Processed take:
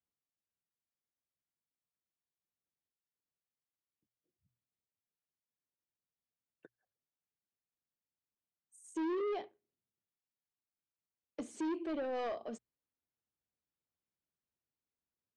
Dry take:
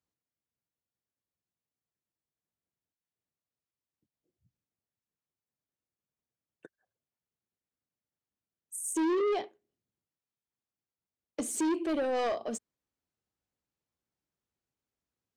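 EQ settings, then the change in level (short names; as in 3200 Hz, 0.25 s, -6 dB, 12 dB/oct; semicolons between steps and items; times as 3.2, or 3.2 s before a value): air absorption 120 m; notches 60/120 Hz; -7.0 dB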